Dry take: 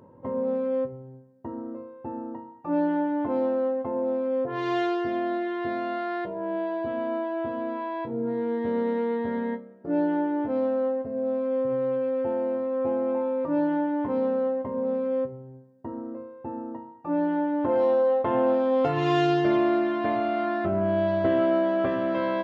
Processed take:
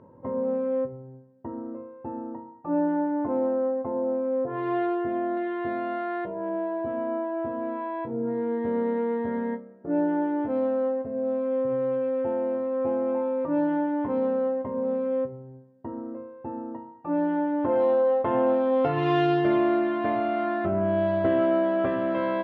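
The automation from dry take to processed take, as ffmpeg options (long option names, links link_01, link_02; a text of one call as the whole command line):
ffmpeg -i in.wav -af "asetnsamples=nb_out_samples=441:pad=0,asendcmd='2.35 lowpass f 1500;5.37 lowpass f 2400;6.49 lowpass f 1600;7.63 lowpass f 2100;10.22 lowpass f 3200',lowpass=2200" out.wav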